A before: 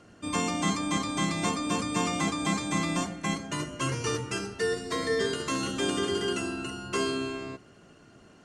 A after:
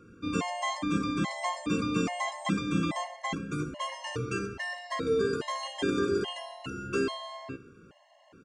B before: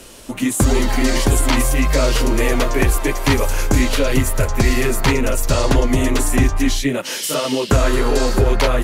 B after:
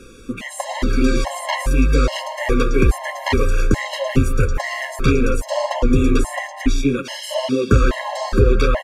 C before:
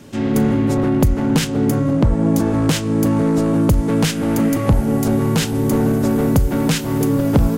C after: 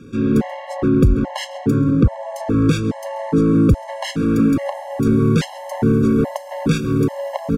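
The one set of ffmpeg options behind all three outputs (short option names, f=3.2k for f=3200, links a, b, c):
-filter_complex "[0:a]aemphasis=mode=reproduction:type=50fm,asplit=2[a][b];[b]adelay=134.1,volume=-17dB,highshelf=f=4k:g=-3.02[c];[a][c]amix=inputs=2:normalize=0,afftfilt=real='re*gt(sin(2*PI*1.2*pts/sr)*(1-2*mod(floor(b*sr/1024/550),2)),0)':imag='im*gt(sin(2*PI*1.2*pts/sr)*(1-2*mod(floor(b*sr/1024/550),2)),0)':win_size=1024:overlap=0.75,volume=1.5dB"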